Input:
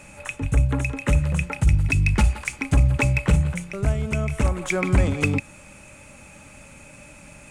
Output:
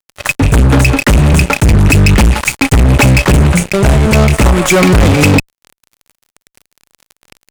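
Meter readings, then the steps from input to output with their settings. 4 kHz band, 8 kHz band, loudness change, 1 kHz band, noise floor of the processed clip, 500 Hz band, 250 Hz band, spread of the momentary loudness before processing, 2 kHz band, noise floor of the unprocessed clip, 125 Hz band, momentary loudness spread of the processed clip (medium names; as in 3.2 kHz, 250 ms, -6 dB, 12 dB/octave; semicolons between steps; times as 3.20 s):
+20.0 dB, +17.5 dB, +13.0 dB, +17.0 dB, under -85 dBFS, +16.0 dB, +15.5 dB, 7 LU, +13.5 dB, -46 dBFS, +12.5 dB, 4 LU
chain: fuzz box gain 29 dB, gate -36 dBFS; trim +8.5 dB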